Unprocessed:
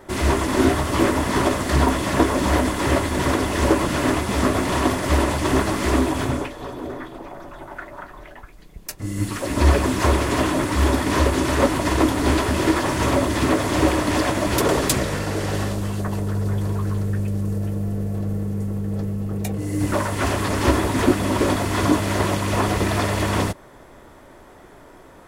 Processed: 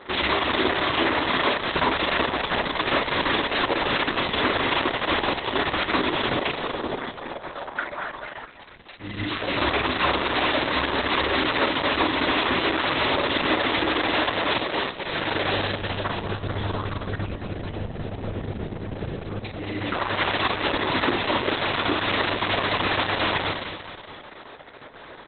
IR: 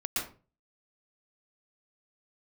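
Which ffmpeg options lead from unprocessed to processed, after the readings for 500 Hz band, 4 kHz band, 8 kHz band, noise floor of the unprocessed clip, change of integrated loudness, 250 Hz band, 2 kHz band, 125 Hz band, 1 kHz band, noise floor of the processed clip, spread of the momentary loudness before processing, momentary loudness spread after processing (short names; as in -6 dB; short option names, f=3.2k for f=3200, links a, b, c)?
-3.5 dB, +5.0 dB, under -40 dB, -46 dBFS, -3.0 dB, -8.0 dB, +3.0 dB, -11.0 dB, -0.5 dB, -43 dBFS, 8 LU, 11 LU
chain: -filter_complex "[0:a]aemphasis=mode=production:type=riaa,acompressor=threshold=-22dB:ratio=12,asplit=2[a][b];[b]adelay=48,volume=-4dB[c];[a][c]amix=inputs=2:normalize=0,aecho=1:1:221|442|663|884|1105|1326:0.335|0.171|0.0871|0.0444|0.0227|0.0116,volume=4dB" -ar 48000 -c:a libopus -b:a 6k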